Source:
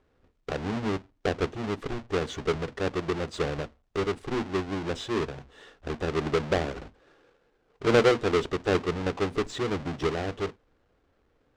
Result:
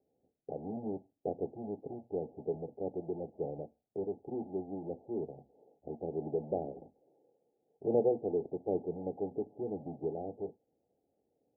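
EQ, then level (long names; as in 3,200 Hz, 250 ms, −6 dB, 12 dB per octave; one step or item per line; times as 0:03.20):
high-pass filter 170 Hz 12 dB per octave
Chebyshev low-pass filter 840 Hz, order 8
−7.0 dB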